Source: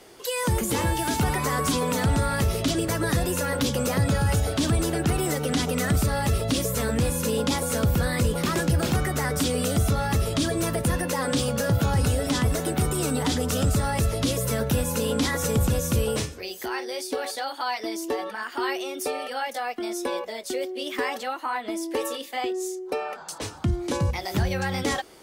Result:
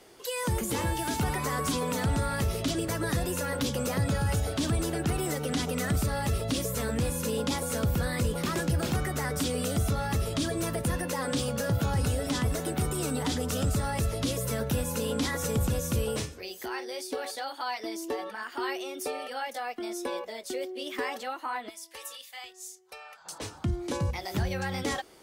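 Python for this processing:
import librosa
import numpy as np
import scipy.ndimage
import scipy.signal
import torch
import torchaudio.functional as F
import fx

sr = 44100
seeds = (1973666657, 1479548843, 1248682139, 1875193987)

y = fx.tone_stack(x, sr, knobs='10-0-10', at=(21.68, 23.24), fade=0.02)
y = y * librosa.db_to_amplitude(-5.0)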